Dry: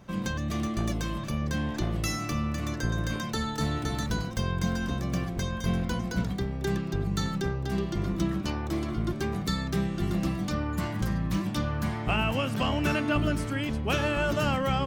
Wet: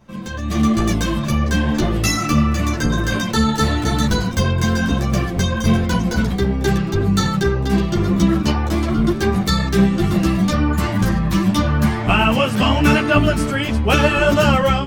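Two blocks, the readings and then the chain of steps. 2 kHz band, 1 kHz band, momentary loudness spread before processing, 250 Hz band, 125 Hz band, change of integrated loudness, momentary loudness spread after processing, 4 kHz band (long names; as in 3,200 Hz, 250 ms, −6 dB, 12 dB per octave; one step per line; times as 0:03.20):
+12.0 dB, +12.0 dB, 5 LU, +12.5 dB, +11.0 dB, +12.0 dB, 5 LU, +12.0 dB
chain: automatic gain control gain up to 12 dB
string-ensemble chorus
level +3.5 dB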